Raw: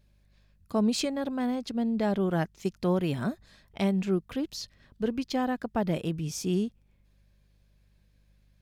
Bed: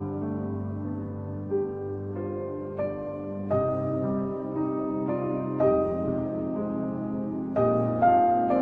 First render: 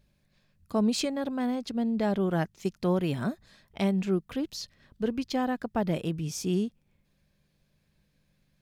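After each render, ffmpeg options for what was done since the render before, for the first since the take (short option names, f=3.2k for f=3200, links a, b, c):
-af "bandreject=f=50:t=h:w=4,bandreject=f=100:t=h:w=4"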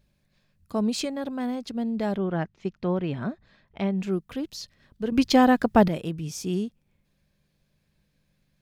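-filter_complex "[0:a]asettb=1/sr,asplit=3[a][b][c];[a]atrim=end=2.164[d];[b]atrim=start=2.16:end=4,asetpts=PTS-STARTPTS,afade=t=in:d=0.004:c=qsin,afade=t=out:st=1.836:d=0.004:c=qsin,lowpass=3k[e];[c]atrim=start=3.996[f];[d][e]acrossfade=d=0.004:c1=hsin:c2=qsin[g];[g][f]acrossfade=d=0.004:c1=qsin:c2=hsin,asplit=3[h][i][j];[h]atrim=end=5.122[k];[i]atrim=start=5.118:end=5.882,asetpts=PTS-STARTPTS,volume=11dB[l];[j]atrim=start=5.878[m];[k][l]acrossfade=d=0.004:c1=hsin:c2=hsin[n];[n][m]acrossfade=d=0.004:c1=hsin:c2=hsin"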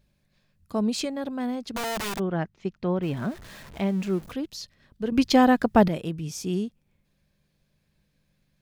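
-filter_complex "[0:a]asplit=3[a][b][c];[a]afade=t=out:st=1.74:d=0.02[d];[b]aeval=exprs='(mod(20*val(0)+1,2)-1)/20':c=same,afade=t=in:st=1.74:d=0.02,afade=t=out:st=2.18:d=0.02[e];[c]afade=t=in:st=2.18:d=0.02[f];[d][e][f]amix=inputs=3:normalize=0,asettb=1/sr,asplit=3[g][h][i];[g]atrim=end=3.024[j];[h]atrim=start=3.02:end=4.32,asetpts=PTS-STARTPTS,afade=t=in:d=0.004:c=qsin,afade=t=out:st=1.296:d=0.004:c=qsin,aeval=exprs='val(0)+0.5*0.01*sgn(val(0))':c=same[k];[i]atrim=start=4.316[l];[j][k]acrossfade=d=0.004:c1=hsin:c2=qsin[m];[m][l]acrossfade=d=0.004:c1=qsin:c2=hsin"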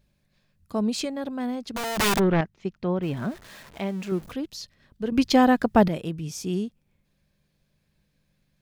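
-filter_complex "[0:a]asettb=1/sr,asplit=3[a][b][c];[a]atrim=end=1.984[d];[b]atrim=start=1.98:end=2.41,asetpts=PTS-STARTPTS,afade=t=in:d=0.004:c=qsin,afade=t=out:st=0.426:d=0.004:c=qsin,aeval=exprs='0.168*sin(PI/2*2*val(0)/0.168)':c=same[e];[c]atrim=start=2.406[f];[d][e]acrossfade=d=0.004:c1=hsin:c2=qsin[g];[g][f]acrossfade=d=0.004:c1=qsin:c2=hsin,asettb=1/sr,asplit=3[h][i][j];[h]atrim=end=3.374[k];[i]atrim=start=3.37:end=4.12,asetpts=PTS-STARTPTS,afade=t=in:d=0.004:c=qsin,afade=t=out:st=0.746:d=0.004:c=qsin,lowshelf=f=210:g=-9[l];[j]atrim=start=4.116[m];[k][l]acrossfade=d=0.004:c1=hsin:c2=qsin[n];[n][m]acrossfade=d=0.004:c1=qsin:c2=hsin"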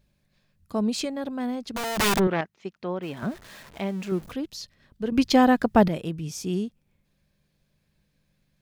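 -filter_complex "[0:a]asettb=1/sr,asplit=3[a][b][c];[a]atrim=end=2.274[d];[b]atrim=start=2.27:end=3.23,asetpts=PTS-STARTPTS,afade=t=in:d=0.004:c=qsin,afade=t=out:st=0.956:d=0.004:c=qsin,highpass=f=440:p=1[e];[c]atrim=start=3.226[f];[d][e]acrossfade=d=0.004:c1=hsin:c2=qsin[g];[g][f]acrossfade=d=0.004:c1=qsin:c2=hsin"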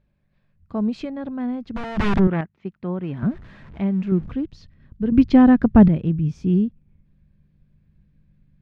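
-af "lowpass=2.1k,asubboost=boost=5.5:cutoff=250"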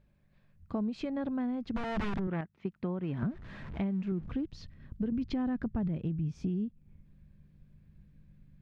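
-af "alimiter=limit=-14dB:level=0:latency=1:release=12,acompressor=threshold=-31dB:ratio=6"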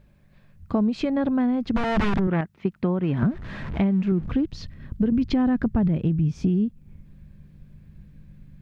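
-af "volume=11dB"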